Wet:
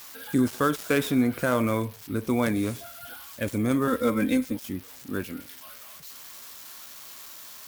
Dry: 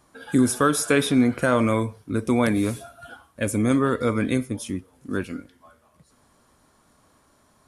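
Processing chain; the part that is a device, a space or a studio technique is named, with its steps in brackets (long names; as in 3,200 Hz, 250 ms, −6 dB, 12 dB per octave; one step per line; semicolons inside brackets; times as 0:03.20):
0:03.87–0:04.57: comb filter 3.8 ms, depth 81%
budget class-D amplifier (gap after every zero crossing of 0.073 ms; spike at every zero crossing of −24.5 dBFS)
level −4 dB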